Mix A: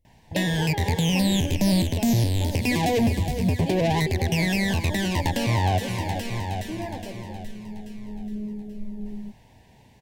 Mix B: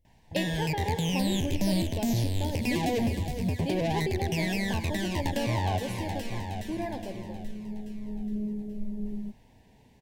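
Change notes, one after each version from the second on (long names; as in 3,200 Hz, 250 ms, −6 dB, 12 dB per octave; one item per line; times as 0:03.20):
first sound −6.5 dB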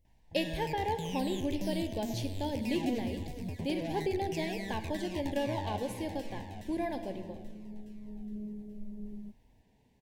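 first sound −10.5 dB
second sound −8.5 dB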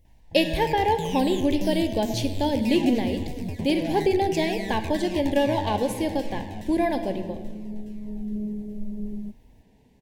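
speech +11.0 dB
first sound +6.5 dB
second sound +10.5 dB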